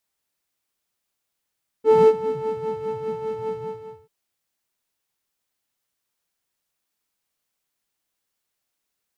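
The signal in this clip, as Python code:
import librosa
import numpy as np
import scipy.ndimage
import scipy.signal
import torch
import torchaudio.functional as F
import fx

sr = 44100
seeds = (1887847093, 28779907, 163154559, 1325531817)

y = fx.sub_patch_wobble(sr, seeds[0], note=81, wave='triangle', wave2='saw', interval_st=0, level2_db=-7.5, sub_db=-1.5, noise_db=-7.0, kind='bandpass', cutoff_hz=120.0, q=11.0, env_oct=1.0, env_decay_s=0.95, env_sustain_pct=40, attack_ms=167.0, decay_s=0.12, sustain_db=-14.5, release_s=0.57, note_s=1.67, lfo_hz=5.0, wobble_oct=0.5)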